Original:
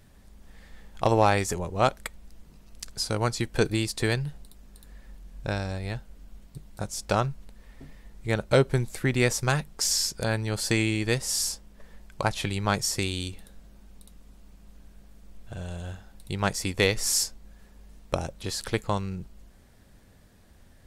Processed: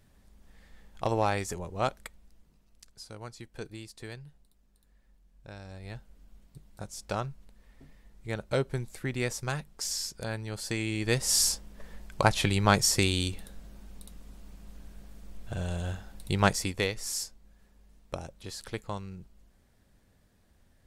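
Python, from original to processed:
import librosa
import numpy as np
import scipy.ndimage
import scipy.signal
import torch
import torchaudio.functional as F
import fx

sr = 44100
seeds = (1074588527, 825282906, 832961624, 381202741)

y = fx.gain(x, sr, db=fx.line((1.9, -6.5), (2.98, -17.0), (5.5, -17.0), (5.96, -8.0), (10.79, -8.0), (11.34, 3.0), (16.45, 3.0), (16.93, -9.0)))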